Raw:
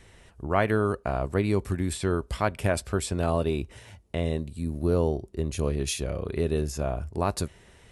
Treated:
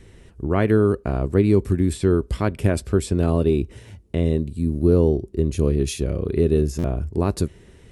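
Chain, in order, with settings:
low shelf with overshoot 510 Hz +7.5 dB, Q 1.5
buffer that repeats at 0:06.78, samples 512, times 4

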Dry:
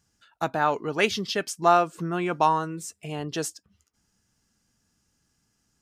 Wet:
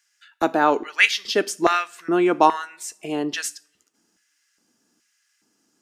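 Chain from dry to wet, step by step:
auto-filter high-pass square 1.2 Hz 300–1,900 Hz
coupled-rooms reverb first 0.41 s, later 1.7 s, from −28 dB, DRR 15.5 dB
level +4 dB

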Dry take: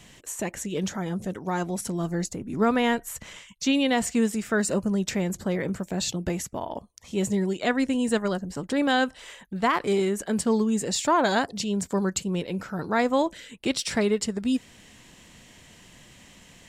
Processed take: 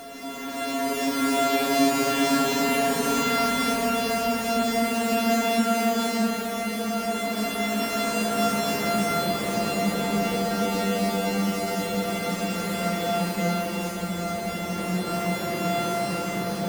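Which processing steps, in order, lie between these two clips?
samples sorted by size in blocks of 64 samples
extreme stretch with random phases 7.6×, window 0.50 s, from 0:03.49

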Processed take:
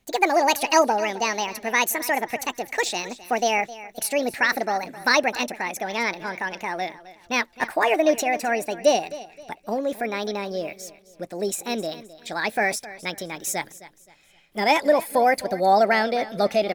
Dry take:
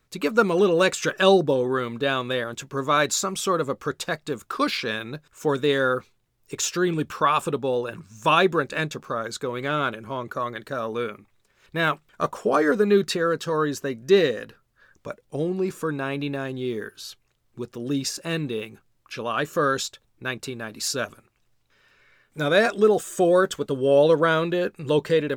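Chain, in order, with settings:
gliding playback speed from 168% → 135%
repeating echo 262 ms, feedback 33%, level −17 dB

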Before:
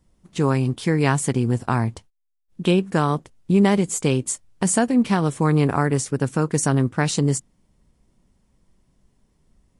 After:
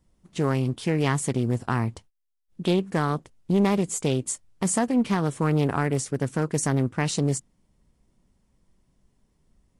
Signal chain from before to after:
in parallel at −3.5 dB: hard clipping −14 dBFS, distortion −14 dB
on the sum: highs frequency-modulated by the lows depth 0.21 ms
level −8 dB

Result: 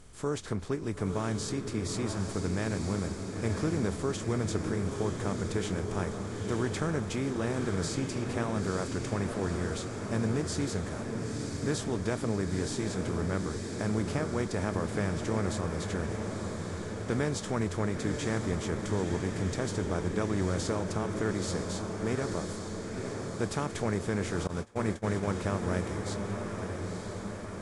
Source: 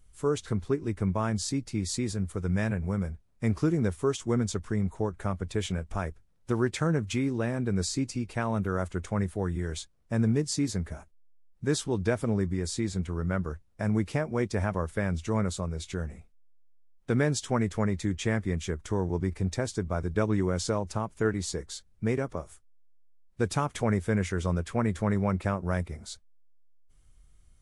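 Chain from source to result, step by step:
compressor on every frequency bin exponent 0.6
feedback delay with all-pass diffusion 937 ms, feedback 66%, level −5 dB
0:24.47–0:25.34: noise gate −22 dBFS, range −23 dB
level −7.5 dB

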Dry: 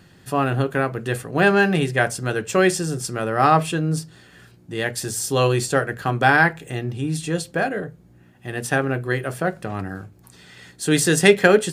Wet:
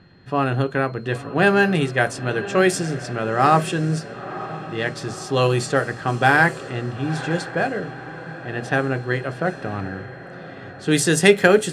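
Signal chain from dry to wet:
steady tone 4,200 Hz −51 dBFS
feedback delay with all-pass diffusion 965 ms, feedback 58%, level −14 dB
low-pass that shuts in the quiet parts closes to 2,200 Hz, open at −12.5 dBFS

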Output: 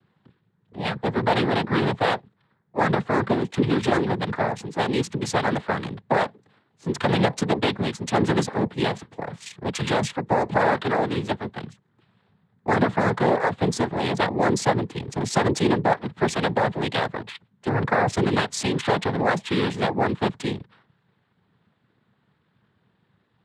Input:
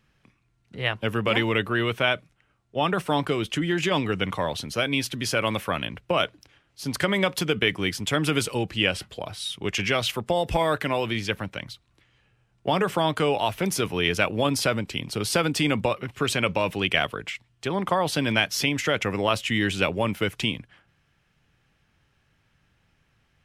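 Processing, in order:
adaptive Wiener filter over 9 samples
parametric band 3,100 Hz −13.5 dB 0.94 octaves
cochlear-implant simulation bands 6
level +4 dB

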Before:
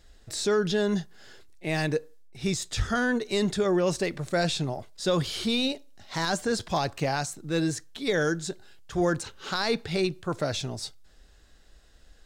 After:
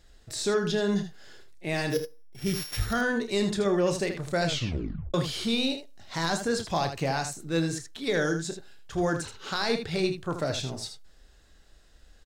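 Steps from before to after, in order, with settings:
0:01.90–0:02.93: samples sorted by size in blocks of 8 samples
ambience of single reflections 30 ms −10.5 dB, 79 ms −8.5 dB
0:04.46: tape stop 0.68 s
level −1.5 dB

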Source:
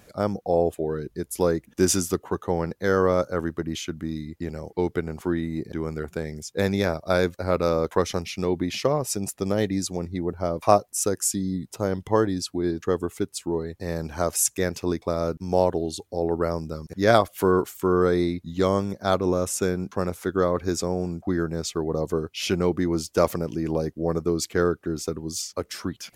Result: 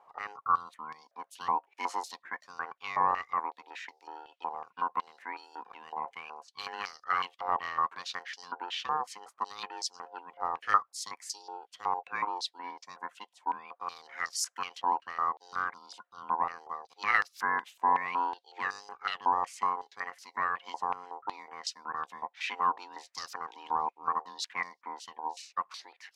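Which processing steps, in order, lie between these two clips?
ring modulation 620 Hz
band-pass on a step sequencer 5.4 Hz 910–5,000 Hz
level +4.5 dB

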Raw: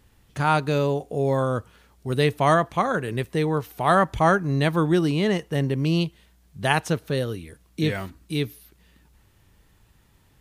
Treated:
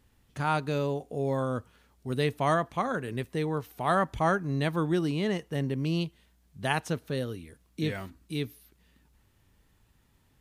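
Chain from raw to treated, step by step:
parametric band 250 Hz +5 dB 0.2 octaves
level −7 dB

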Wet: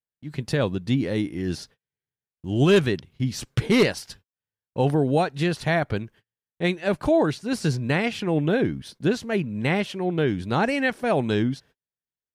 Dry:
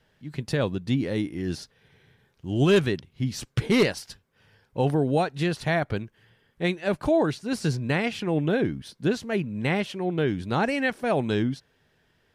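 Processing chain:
noise gate −50 dBFS, range −39 dB
level +2 dB

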